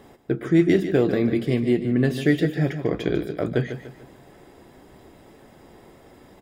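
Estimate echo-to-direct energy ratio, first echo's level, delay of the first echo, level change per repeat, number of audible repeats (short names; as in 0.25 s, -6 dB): -10.0 dB, -10.5 dB, 0.147 s, -8.0 dB, 3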